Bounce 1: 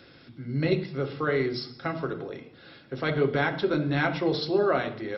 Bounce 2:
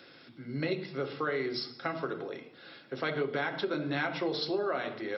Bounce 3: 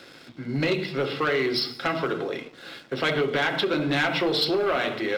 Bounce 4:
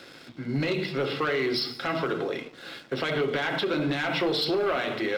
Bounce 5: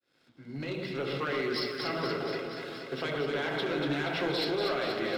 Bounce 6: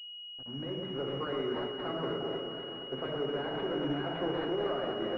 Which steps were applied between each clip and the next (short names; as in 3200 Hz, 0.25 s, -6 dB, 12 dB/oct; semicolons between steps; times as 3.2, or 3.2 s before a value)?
HPF 130 Hz; low shelf 250 Hz -8.5 dB; compressor 5:1, threshold -28 dBFS, peak gain reduction 7 dB
sample leveller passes 2; dynamic EQ 2900 Hz, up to +6 dB, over -48 dBFS, Q 1.6; gain +2 dB
limiter -20 dBFS, peak gain reduction 7 dB
opening faded in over 1.01 s; on a send: echo with dull and thin repeats by turns 0.119 s, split 1300 Hz, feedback 83%, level -3 dB; on the sum: gain -6.5 dB
sample gate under -45 dBFS; notches 50/100/150 Hz; pulse-width modulation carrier 2900 Hz; gain -1.5 dB